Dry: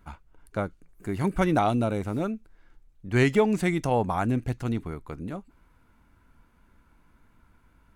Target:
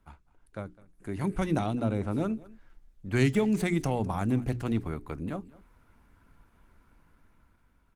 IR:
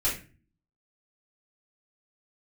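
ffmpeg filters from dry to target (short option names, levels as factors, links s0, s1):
-filter_complex "[0:a]asettb=1/sr,asplit=3[s0][s1][s2];[s0]atrim=end=1.664[s3];[s1]atrim=start=1.66:end=2.11,asetpts=PTS-STARTPTS,afade=t=in:d=0.004:c=qsin,afade=t=out:st=0.446:d=0.004:c=qsin,highshelf=f=3800:g=-9[s4];[s2]atrim=start=2.106[s5];[s3][s4]acrossfade=d=0.004:c1=hsin:c2=qsin[s6];[s6][s5]acrossfade=d=0.004:c1=qsin:c2=hsin,bandreject=f=60:t=h:w=6,bandreject=f=120:t=h:w=6,bandreject=f=180:t=h:w=6,bandreject=f=240:t=h:w=6,bandreject=f=300:t=h:w=6,bandreject=f=360:t=h:w=6,bandreject=f=420:t=h:w=6,acrossover=split=310|3000[s7][s8][s9];[s8]acompressor=threshold=0.0282:ratio=5[s10];[s7][s10][s9]amix=inputs=3:normalize=0,aecho=1:1:206:0.0891,dynaudnorm=f=290:g=9:m=2.82,volume=0.422" -ar 48000 -c:a libopus -b:a 20k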